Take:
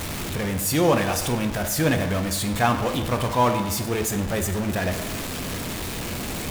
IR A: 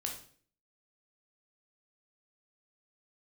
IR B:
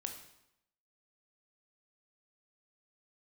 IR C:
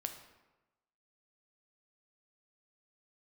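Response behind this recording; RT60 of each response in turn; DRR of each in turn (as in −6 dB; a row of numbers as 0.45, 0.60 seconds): C; 0.50, 0.80, 1.1 seconds; 1.0, 4.0, 5.5 decibels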